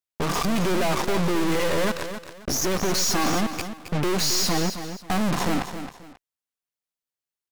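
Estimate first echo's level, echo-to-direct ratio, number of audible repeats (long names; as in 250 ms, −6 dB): −10.0 dB, −9.5 dB, 2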